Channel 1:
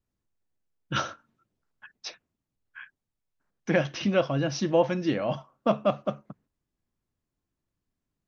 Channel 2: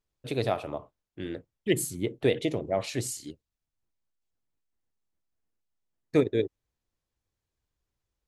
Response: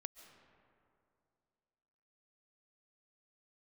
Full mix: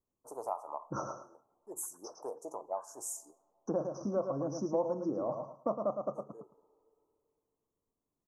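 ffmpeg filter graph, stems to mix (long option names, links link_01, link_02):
-filter_complex "[0:a]bass=frequency=250:gain=-13,treble=frequency=4000:gain=-8,volume=3dB,asplit=3[link_01][link_02][link_03];[link_02]volume=-7.5dB[link_04];[1:a]agate=range=-33dB:threshold=-47dB:ratio=3:detection=peak,highpass=frequency=900:width_type=q:width=4.4,volume=-3dB,asplit=2[link_05][link_06];[link_06]volume=-13dB[link_07];[link_03]apad=whole_len=364981[link_08];[link_05][link_08]sidechaincompress=threshold=-39dB:ratio=8:attack=16:release=911[link_09];[2:a]atrim=start_sample=2205[link_10];[link_07][link_10]afir=irnorm=-1:irlink=0[link_11];[link_04]aecho=0:1:109|218|327:1|0.19|0.0361[link_12];[link_01][link_09][link_11][link_12]amix=inputs=4:normalize=0,asuperstop=centerf=2700:order=12:qfactor=0.56,equalizer=frequency=740:width=1.5:gain=-3.5,acompressor=threshold=-36dB:ratio=2"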